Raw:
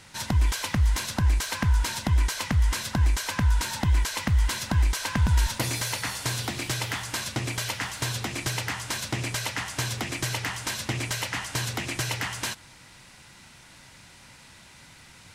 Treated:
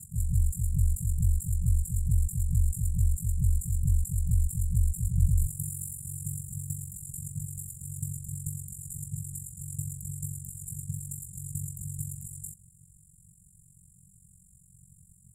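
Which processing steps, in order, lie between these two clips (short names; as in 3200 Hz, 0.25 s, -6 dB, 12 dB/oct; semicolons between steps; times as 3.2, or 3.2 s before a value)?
reverse echo 0.181 s -4.5 dB; FFT band-reject 180–7000 Hz; ring modulator 23 Hz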